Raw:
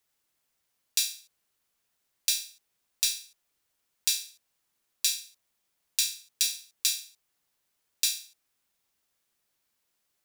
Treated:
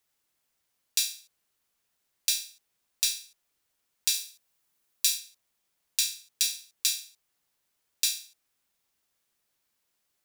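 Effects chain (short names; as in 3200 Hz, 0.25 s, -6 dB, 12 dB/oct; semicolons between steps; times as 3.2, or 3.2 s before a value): 4.14–5.18 high shelf 10000 Hz +5 dB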